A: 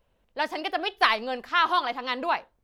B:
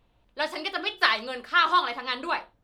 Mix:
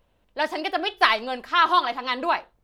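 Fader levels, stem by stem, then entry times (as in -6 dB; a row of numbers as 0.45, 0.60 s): +2.0, -5.5 dB; 0.00, 0.00 s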